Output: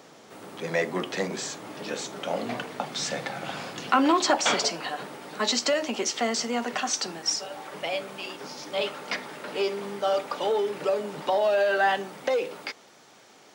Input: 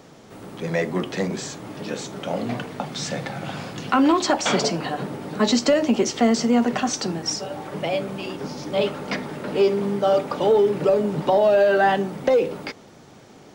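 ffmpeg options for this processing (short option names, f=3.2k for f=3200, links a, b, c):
-af "asetnsamples=n=441:p=0,asendcmd='4.54 highpass f 1100',highpass=f=470:p=1"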